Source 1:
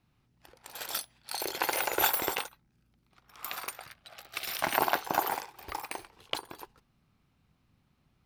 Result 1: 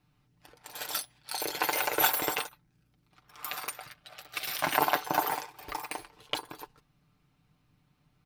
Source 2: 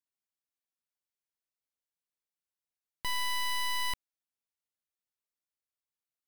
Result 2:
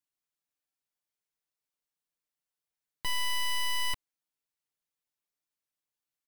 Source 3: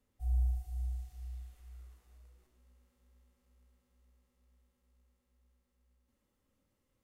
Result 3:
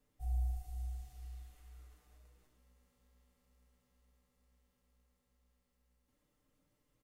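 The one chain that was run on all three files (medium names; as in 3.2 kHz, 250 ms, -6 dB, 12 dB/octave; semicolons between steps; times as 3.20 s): comb 6.7 ms, depth 57%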